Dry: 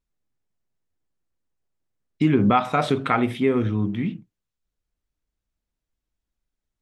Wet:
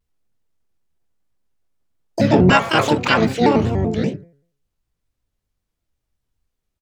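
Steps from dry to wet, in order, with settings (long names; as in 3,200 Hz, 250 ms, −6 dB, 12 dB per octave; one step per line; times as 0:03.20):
pitch-shifted copies added −5 semitones −4 dB, +12 semitones −2 dB
hum removal 155.4 Hz, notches 15
pitch modulation by a square or saw wave square 5.2 Hz, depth 160 cents
level +2.5 dB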